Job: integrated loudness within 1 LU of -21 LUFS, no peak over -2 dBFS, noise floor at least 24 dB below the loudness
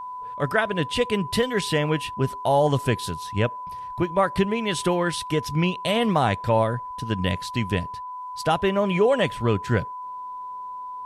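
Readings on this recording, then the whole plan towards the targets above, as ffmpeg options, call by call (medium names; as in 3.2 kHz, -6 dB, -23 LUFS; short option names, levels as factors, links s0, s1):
steady tone 1 kHz; tone level -32 dBFS; loudness -24.0 LUFS; peak level -7.5 dBFS; loudness target -21.0 LUFS
-> -af "bandreject=f=1000:w=30"
-af "volume=1.41"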